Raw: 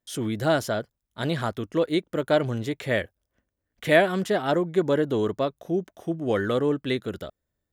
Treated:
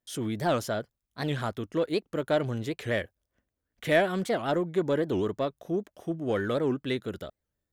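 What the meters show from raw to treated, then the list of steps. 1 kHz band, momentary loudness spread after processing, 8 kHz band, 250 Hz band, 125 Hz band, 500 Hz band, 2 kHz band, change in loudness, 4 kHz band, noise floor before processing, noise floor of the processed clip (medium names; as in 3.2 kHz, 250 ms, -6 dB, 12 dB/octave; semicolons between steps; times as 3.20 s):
-3.5 dB, 9 LU, -3.0 dB, -4.0 dB, -3.5 dB, -4.0 dB, -4.5 dB, -4.0 dB, -4.5 dB, -83 dBFS, under -85 dBFS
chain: in parallel at -6 dB: saturation -20.5 dBFS, distortion -11 dB; on the sum: warped record 78 rpm, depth 250 cents; trim -6.5 dB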